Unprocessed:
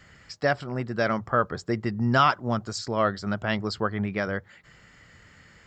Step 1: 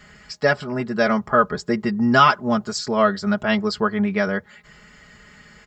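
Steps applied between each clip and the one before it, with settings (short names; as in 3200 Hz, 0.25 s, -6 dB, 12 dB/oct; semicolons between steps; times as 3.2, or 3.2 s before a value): comb 4.8 ms, depth 79%; gain +4 dB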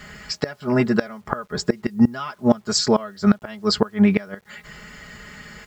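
flipped gate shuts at -12 dBFS, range -24 dB; bit-crush 11-bit; gain +7 dB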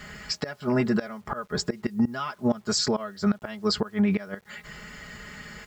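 limiter -13.5 dBFS, peak gain reduction 10 dB; gain -1.5 dB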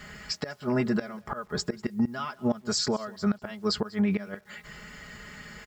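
echo 0.194 s -22.5 dB; gain -2.5 dB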